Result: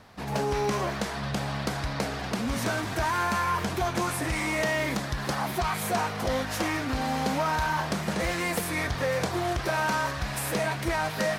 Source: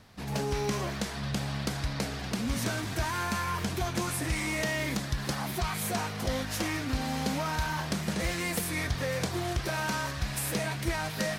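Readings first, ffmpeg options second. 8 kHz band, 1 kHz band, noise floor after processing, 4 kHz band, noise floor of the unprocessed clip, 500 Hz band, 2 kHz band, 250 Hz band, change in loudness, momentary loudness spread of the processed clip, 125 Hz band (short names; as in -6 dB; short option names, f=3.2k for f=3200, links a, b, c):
0.0 dB, +6.5 dB, -34 dBFS, +1.0 dB, -37 dBFS, +5.5 dB, +4.0 dB, +2.0 dB, +3.0 dB, 5 LU, +0.5 dB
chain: -af "asoftclip=type=tanh:threshold=-19.5dB,equalizer=f=840:t=o:w=2.7:g=7.5"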